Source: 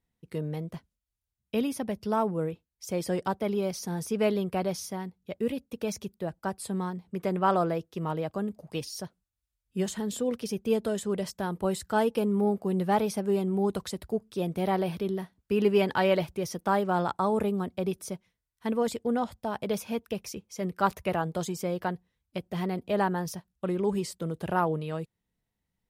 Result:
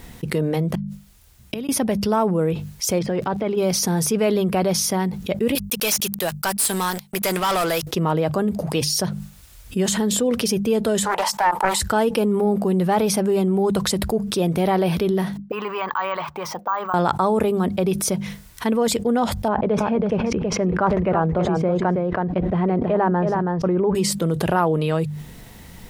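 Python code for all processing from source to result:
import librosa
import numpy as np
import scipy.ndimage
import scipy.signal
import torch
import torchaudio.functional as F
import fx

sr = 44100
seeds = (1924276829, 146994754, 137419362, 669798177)

y = fx.chain(x, sr, fx.gate_flip(shuts_db=-36.0, range_db=-29),
    fx.upward_expand(threshold_db=-58.0, expansion=1.5), at=(0.75, 1.69))
y = fx.level_steps(y, sr, step_db=19, at=(2.98, 3.56), fade=0.02)
y = fx.lowpass(y, sr, hz=3100.0, slope=12, at=(2.98, 3.56), fade=0.02)
y = fx.dmg_crackle(y, sr, seeds[0], per_s=120.0, level_db=-63.0, at=(2.98, 3.56), fade=0.02)
y = fx.chain(y, sr, fx.pre_emphasis(coefficient=0.97),
    fx.leveller(passes=5),
    fx.upward_expand(threshold_db=-49.0, expansion=1.5), at=(5.55, 7.87))
y = fx.chain(y, sr, fx.highpass_res(hz=880.0, q=10.0),
    fx.doppler_dist(depth_ms=0.31), at=(11.05, 11.8))
y = fx.chain(y, sr, fx.peak_eq(hz=420.0, db=-9.0, octaves=2.6),
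    fx.auto_wah(base_hz=270.0, top_hz=1100.0, q=6.4, full_db=-33.0, direction='up'),
    fx.resample_bad(factor=2, down='none', up='hold'), at=(15.37, 16.94))
y = fx.chain(y, sr, fx.lowpass(hz=1400.0, slope=12),
    fx.echo_single(ms=324, db=-9.5),
    fx.sustainer(db_per_s=82.0), at=(19.48, 23.95))
y = fx.hum_notches(y, sr, base_hz=50, count=4)
y = fx.env_flatten(y, sr, amount_pct=70)
y = F.gain(torch.from_numpy(y), 1.5).numpy()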